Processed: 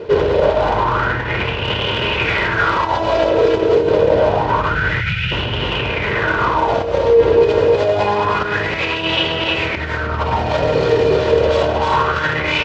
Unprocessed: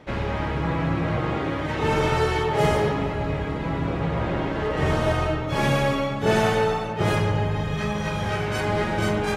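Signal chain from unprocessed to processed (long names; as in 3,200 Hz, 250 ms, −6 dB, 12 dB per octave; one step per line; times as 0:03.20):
lower of the sound and its delayed copy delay 1.5 ms
high-frequency loss of the air 80 metres
compressor whose output falls as the input rises −28 dBFS, ratio −0.5
gain on a spectral selection 0:03.48–0:03.94, 260–1,700 Hz −23 dB
on a send at −21 dB: convolution reverb RT60 1.3 s, pre-delay 46 ms
on the sum: hard clipping −18.5 dBFS, distortion −26 dB
flat-topped bell 6,200 Hz +9 dB
single-tap delay 231 ms −4 dB
wrong playback speed 45 rpm record played at 33 rpm
high-pass filter 72 Hz 12 dB per octave
boost into a limiter +21.5 dB
auto-filter bell 0.27 Hz 430–3,000 Hz +17 dB
level −12.5 dB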